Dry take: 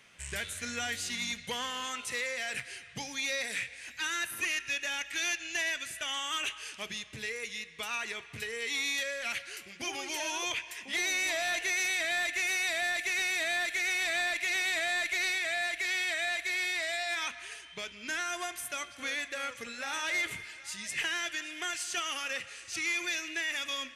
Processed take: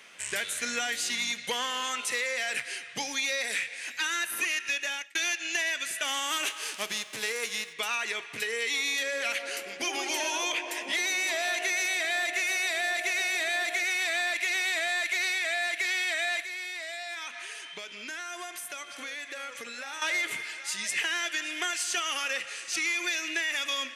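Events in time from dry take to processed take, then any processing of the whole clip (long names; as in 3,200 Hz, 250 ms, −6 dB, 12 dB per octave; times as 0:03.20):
0:04.75–0:05.15: fade out
0:06.03–0:07.72: spectral envelope flattened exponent 0.6
0:08.60–0:13.84: delay with a band-pass on its return 137 ms, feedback 72%, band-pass 480 Hz, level −6.5 dB
0:14.88–0:15.47: parametric band 170 Hz −12 dB
0:16.41–0:20.02: downward compressor 4 to 1, threshold −44 dBFS
whole clip: high-pass filter 290 Hz 12 dB per octave; downward compressor, threshold −34 dBFS; level +7.5 dB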